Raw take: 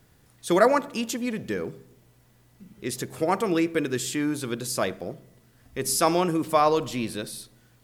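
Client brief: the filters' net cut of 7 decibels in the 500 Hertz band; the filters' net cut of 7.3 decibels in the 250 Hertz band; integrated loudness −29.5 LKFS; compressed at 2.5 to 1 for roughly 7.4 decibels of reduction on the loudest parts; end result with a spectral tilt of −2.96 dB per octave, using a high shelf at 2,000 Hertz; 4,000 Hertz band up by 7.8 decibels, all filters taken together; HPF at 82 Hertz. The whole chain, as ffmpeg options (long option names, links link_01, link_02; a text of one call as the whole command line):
ffmpeg -i in.wav -af "highpass=82,equalizer=frequency=250:width_type=o:gain=-7,equalizer=frequency=500:width_type=o:gain=-8,highshelf=frequency=2000:gain=6,equalizer=frequency=4000:width_type=o:gain=4,acompressor=threshold=-27dB:ratio=2.5,volume=0.5dB" out.wav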